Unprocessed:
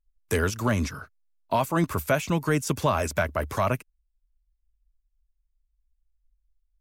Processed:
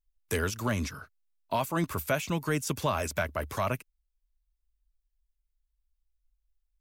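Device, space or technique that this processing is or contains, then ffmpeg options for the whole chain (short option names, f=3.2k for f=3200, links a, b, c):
presence and air boost: -af "equalizer=f=3.4k:t=o:w=1.6:g=3.5,highshelf=f=11k:g=7,volume=-5.5dB"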